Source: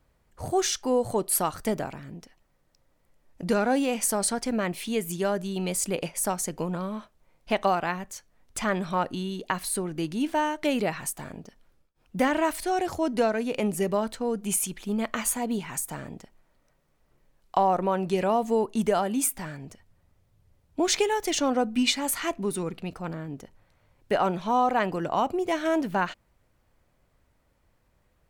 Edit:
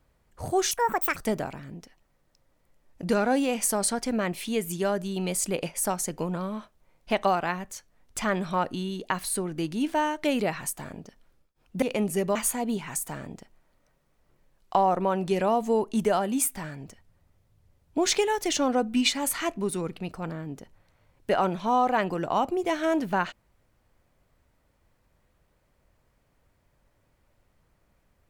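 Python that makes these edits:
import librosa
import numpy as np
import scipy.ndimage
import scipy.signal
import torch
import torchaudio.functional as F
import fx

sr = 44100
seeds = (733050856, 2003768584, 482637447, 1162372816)

y = fx.edit(x, sr, fx.speed_span(start_s=0.71, length_s=0.85, speed=1.88),
    fx.cut(start_s=12.22, length_s=1.24),
    fx.cut(start_s=13.99, length_s=1.18), tone=tone)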